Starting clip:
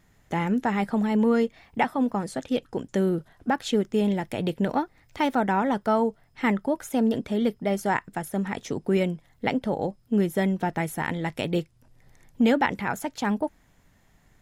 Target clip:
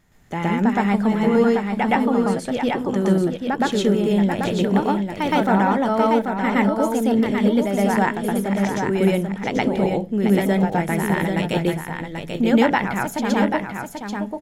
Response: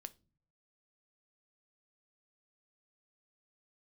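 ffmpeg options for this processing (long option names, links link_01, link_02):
-filter_complex "[0:a]aecho=1:1:787:0.501,asplit=2[link_01][link_02];[1:a]atrim=start_sample=2205,adelay=118[link_03];[link_02][link_03]afir=irnorm=-1:irlink=0,volume=9dB[link_04];[link_01][link_04]amix=inputs=2:normalize=0"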